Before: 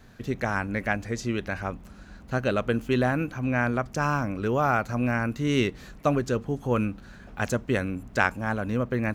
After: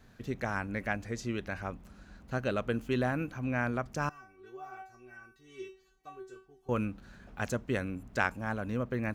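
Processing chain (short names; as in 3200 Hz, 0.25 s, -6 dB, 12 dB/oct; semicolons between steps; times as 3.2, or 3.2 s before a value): 4.09–6.69 resonator 380 Hz, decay 0.31 s, harmonics all, mix 100%; gain -6.5 dB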